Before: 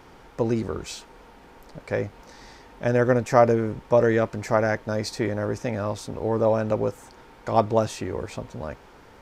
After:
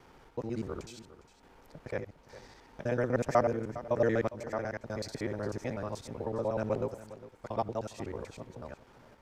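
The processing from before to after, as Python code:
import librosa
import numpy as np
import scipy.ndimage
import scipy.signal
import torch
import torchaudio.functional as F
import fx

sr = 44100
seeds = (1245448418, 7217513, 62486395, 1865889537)

y = fx.local_reverse(x, sr, ms=62.0)
y = fx.tremolo_random(y, sr, seeds[0], hz=3.5, depth_pct=55)
y = y + 10.0 ** (-16.0 / 20.0) * np.pad(y, (int(407 * sr / 1000.0), 0))[:len(y)]
y = y * 10.0 ** (-7.5 / 20.0)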